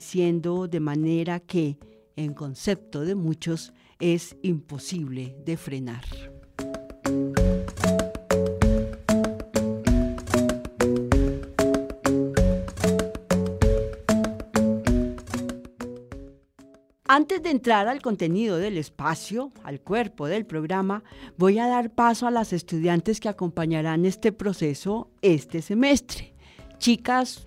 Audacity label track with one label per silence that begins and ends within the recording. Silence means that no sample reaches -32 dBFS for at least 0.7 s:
16.180000	17.090000	silence